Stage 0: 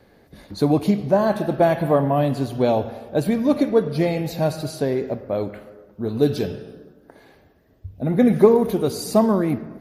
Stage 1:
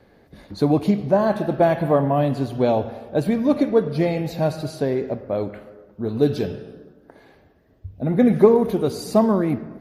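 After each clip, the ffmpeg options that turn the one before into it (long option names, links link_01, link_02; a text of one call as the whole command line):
ffmpeg -i in.wav -af "highshelf=frequency=5700:gain=-7.5" out.wav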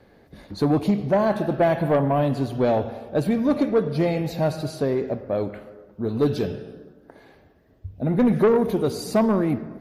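ffmpeg -i in.wav -af "asoftclip=type=tanh:threshold=-12dB" out.wav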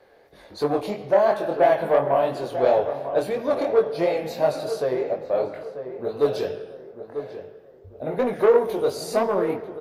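ffmpeg -i in.wav -filter_complex "[0:a]flanger=delay=20:depth=5.1:speed=2.9,lowshelf=frequency=330:width_type=q:width=1.5:gain=-11.5,asplit=2[link_01][link_02];[link_02]adelay=942,lowpass=frequency=1500:poles=1,volume=-10dB,asplit=2[link_03][link_04];[link_04]adelay=942,lowpass=frequency=1500:poles=1,volume=0.37,asplit=2[link_05][link_06];[link_06]adelay=942,lowpass=frequency=1500:poles=1,volume=0.37,asplit=2[link_07][link_08];[link_08]adelay=942,lowpass=frequency=1500:poles=1,volume=0.37[link_09];[link_01][link_03][link_05][link_07][link_09]amix=inputs=5:normalize=0,volume=3dB" out.wav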